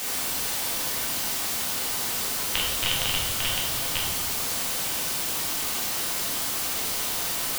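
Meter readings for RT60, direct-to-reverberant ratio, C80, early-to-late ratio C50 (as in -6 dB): 1.2 s, -4.0 dB, 5.5 dB, 3.0 dB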